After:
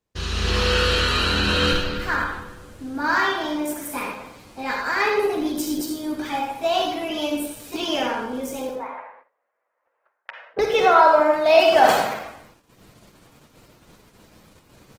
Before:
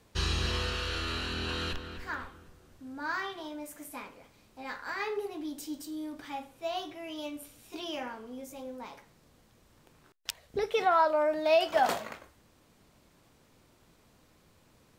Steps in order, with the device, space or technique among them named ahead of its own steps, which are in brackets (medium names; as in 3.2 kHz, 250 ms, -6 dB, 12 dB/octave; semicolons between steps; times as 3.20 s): 8.69–10.59 s: Chebyshev band-pass 540–2000 Hz, order 3; speakerphone in a meeting room (reverberation RT60 0.70 s, pre-delay 43 ms, DRR 1.5 dB; speakerphone echo 300 ms, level -27 dB; level rider gain up to 12 dB; gate -48 dBFS, range -20 dB; Opus 16 kbps 48 kHz)